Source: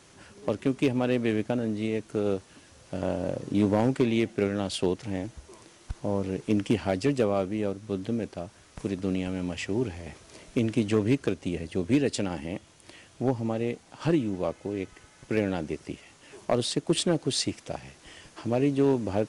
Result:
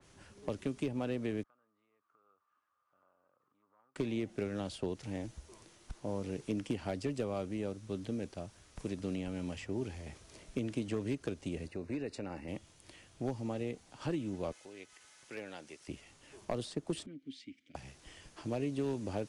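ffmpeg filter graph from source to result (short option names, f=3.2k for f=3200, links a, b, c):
-filter_complex "[0:a]asettb=1/sr,asplit=3[a][b][c];[a]atrim=end=1.434[d];[b]atrim=start=1.43:end=3.96,asetpts=PTS-STARTPTS,afade=t=in:d=0.004:c=qsin,afade=t=out:st=2.526:d=0.004:c=qsin,acompressor=threshold=-35dB:ratio=4:attack=3.2:release=140:knee=1:detection=peak,bandpass=f=1.2k:t=q:w=14[e];[c]atrim=start=3.956[f];[d][e]acrossfade=d=0.004:c1=hsin:c2=qsin[g];[g][f]acrossfade=d=0.004:c1=qsin:c2=hsin,asettb=1/sr,asplit=3[h][i][j];[h]atrim=end=11.684[k];[i]atrim=start=11.68:end=12.48,asetpts=PTS-STARTPTS,afade=t=in:d=0.004:c=qsin,afade=t=out:st=0.796:d=0.004:c=qsin,bass=f=250:g=-6,treble=f=4k:g=-11,acompressor=threshold=-29dB:ratio=2:attack=3.2:release=140:knee=1:detection=peak,asuperstop=centerf=3200:order=4:qfactor=3.8[l];[j]atrim=start=12.476[m];[k][l]acrossfade=d=0.004:c1=hsin:c2=qsin[n];[n][m]acrossfade=d=0.004:c1=qsin:c2=hsin,asettb=1/sr,asplit=3[o][p][q];[o]atrim=end=14.524[r];[p]atrim=start=14.52:end=15.88,asetpts=PTS-STARTPTS,afade=t=in:d=0.004:c=qsin,afade=t=out:st=1.356:d=0.004:c=qsin,highpass=f=1.4k:p=1,acompressor=mode=upward:threshold=-46dB:ratio=2.5:attack=3.2:release=140:knee=2.83:detection=peak[s];[q]atrim=start=15.876[t];[r][s]acrossfade=d=0.004:c1=hsin:c2=qsin[u];[u][t]acrossfade=d=0.004:c1=qsin:c2=hsin,asettb=1/sr,asplit=3[v][w][x];[v]atrim=end=17.064[y];[w]atrim=start=17.06:end=17.75,asetpts=PTS-STARTPTS,afade=t=in:d=0.004:c=qsin,afade=t=out:st=0.686:d=0.004:c=qsin,asplit=3[z][aa][ab];[z]bandpass=f=270:t=q:w=8,volume=0dB[ac];[aa]bandpass=f=2.29k:t=q:w=8,volume=-6dB[ad];[ab]bandpass=f=3.01k:t=q:w=8,volume=-9dB[ae];[ac][ad][ae]amix=inputs=3:normalize=0,equalizer=f=420:w=0.9:g=-6[af];[x]atrim=start=17.746[ag];[y][af]acrossfade=d=0.004:c1=hsin:c2=qsin[ah];[ah][ag]acrossfade=d=0.004:c1=qsin:c2=hsin,lowshelf=f=77:g=11,acrossover=split=190|1700[ai][aj][ak];[ai]acompressor=threshold=-35dB:ratio=4[al];[aj]acompressor=threshold=-25dB:ratio=4[am];[ak]acompressor=threshold=-44dB:ratio=4[an];[al][am][an]amix=inputs=3:normalize=0,adynamicequalizer=threshold=0.00398:dfrequency=2900:dqfactor=0.7:tfrequency=2900:tqfactor=0.7:attack=5:release=100:ratio=0.375:range=2:mode=boostabove:tftype=highshelf,volume=-8dB"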